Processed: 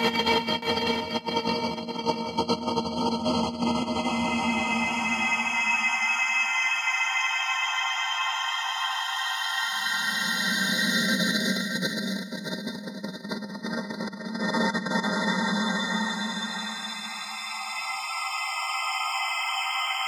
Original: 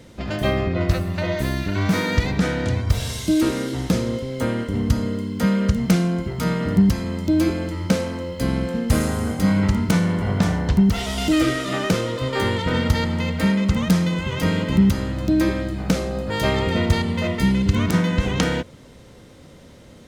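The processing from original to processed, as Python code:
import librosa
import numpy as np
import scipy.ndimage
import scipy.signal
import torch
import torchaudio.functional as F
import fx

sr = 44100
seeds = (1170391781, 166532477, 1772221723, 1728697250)

p1 = fx.spec_dropout(x, sr, seeds[0], share_pct=73)
p2 = fx.notch(p1, sr, hz=1700.0, q=8.1)
p3 = fx.small_body(p2, sr, hz=(220.0, 730.0), ring_ms=85, db=10)
p4 = fx.paulstretch(p3, sr, seeds[1], factor=26.0, window_s=0.25, from_s=12.98)
p5 = fx.hum_notches(p4, sr, base_hz=50, count=4)
p6 = fx.over_compress(p5, sr, threshold_db=-26.0, ratio=-0.5)
p7 = fx.weighting(p6, sr, curve='A')
p8 = p7 + fx.echo_feedback(p7, sr, ms=622, feedback_pct=16, wet_db=-6.5, dry=0)
y = p8 * librosa.db_to_amplitude(6.0)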